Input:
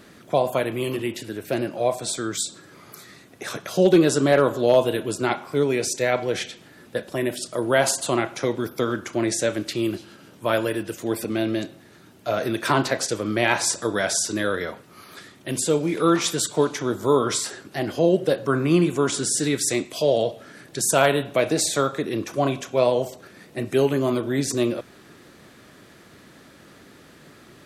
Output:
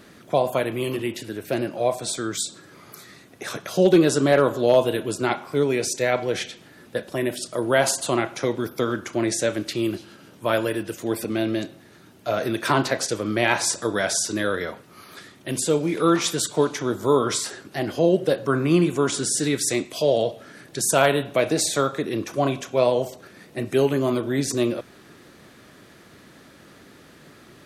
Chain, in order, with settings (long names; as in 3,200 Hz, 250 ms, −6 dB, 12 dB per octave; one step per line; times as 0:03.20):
notch filter 7,600 Hz, Q 29